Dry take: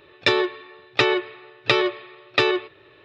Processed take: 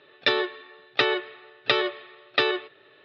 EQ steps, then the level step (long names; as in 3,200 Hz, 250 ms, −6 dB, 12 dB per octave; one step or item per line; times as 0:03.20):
loudspeaker in its box 230–4,500 Hz, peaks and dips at 340 Hz −8 dB, 520 Hz −3 dB, 1,000 Hz −8 dB, 2,400 Hz −6 dB
0.0 dB